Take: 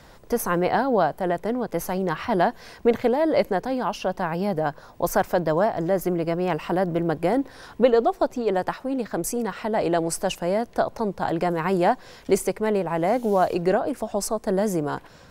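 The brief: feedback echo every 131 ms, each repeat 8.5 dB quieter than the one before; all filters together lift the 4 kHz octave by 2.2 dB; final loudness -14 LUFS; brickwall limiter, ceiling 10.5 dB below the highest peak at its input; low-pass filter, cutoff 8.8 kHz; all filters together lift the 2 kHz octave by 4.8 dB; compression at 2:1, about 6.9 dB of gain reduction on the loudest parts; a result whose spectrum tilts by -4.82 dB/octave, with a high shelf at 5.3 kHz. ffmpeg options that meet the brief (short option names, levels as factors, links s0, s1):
-af "lowpass=8800,equalizer=f=2000:t=o:g=6.5,equalizer=f=4000:t=o:g=3.5,highshelf=f=5300:g=-7.5,acompressor=threshold=0.0562:ratio=2,alimiter=limit=0.0794:level=0:latency=1,aecho=1:1:131|262|393|524:0.376|0.143|0.0543|0.0206,volume=7.08"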